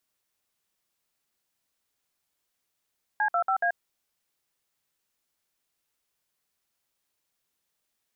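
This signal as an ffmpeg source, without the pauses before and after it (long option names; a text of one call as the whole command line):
ffmpeg -f lavfi -i "aevalsrc='0.0596*clip(min(mod(t,0.141),0.084-mod(t,0.141))/0.002,0,1)*(eq(floor(t/0.141),0)*(sin(2*PI*852*mod(t,0.141))+sin(2*PI*1633*mod(t,0.141)))+eq(floor(t/0.141),1)*(sin(2*PI*697*mod(t,0.141))+sin(2*PI*1336*mod(t,0.141)))+eq(floor(t/0.141),2)*(sin(2*PI*770*mod(t,0.141))+sin(2*PI*1336*mod(t,0.141)))+eq(floor(t/0.141),3)*(sin(2*PI*697*mod(t,0.141))+sin(2*PI*1633*mod(t,0.141))))':duration=0.564:sample_rate=44100" out.wav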